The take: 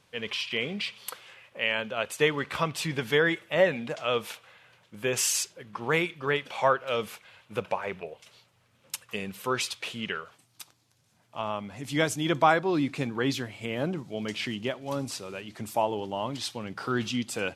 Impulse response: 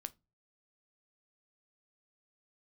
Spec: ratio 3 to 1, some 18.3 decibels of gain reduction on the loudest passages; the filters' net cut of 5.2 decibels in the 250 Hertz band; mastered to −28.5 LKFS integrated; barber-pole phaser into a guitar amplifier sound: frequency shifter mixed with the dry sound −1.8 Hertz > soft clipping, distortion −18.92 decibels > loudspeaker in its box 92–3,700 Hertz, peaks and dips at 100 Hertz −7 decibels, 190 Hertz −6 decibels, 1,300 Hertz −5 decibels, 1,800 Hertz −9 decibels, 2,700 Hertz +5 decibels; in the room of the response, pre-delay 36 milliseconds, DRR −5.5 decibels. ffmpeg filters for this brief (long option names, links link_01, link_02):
-filter_complex "[0:a]equalizer=frequency=250:width_type=o:gain=-5.5,acompressor=threshold=-43dB:ratio=3,asplit=2[link_01][link_02];[1:a]atrim=start_sample=2205,adelay=36[link_03];[link_02][link_03]afir=irnorm=-1:irlink=0,volume=9dB[link_04];[link_01][link_04]amix=inputs=2:normalize=0,asplit=2[link_05][link_06];[link_06]afreqshift=-1.8[link_07];[link_05][link_07]amix=inputs=2:normalize=1,asoftclip=threshold=-28dB,highpass=92,equalizer=frequency=100:width_type=q:width=4:gain=-7,equalizer=frequency=190:width_type=q:width=4:gain=-6,equalizer=frequency=1300:width_type=q:width=4:gain=-5,equalizer=frequency=1800:width_type=q:width=4:gain=-9,equalizer=frequency=2700:width_type=q:width=4:gain=5,lowpass=frequency=3700:width=0.5412,lowpass=frequency=3700:width=1.3066,volume=13dB"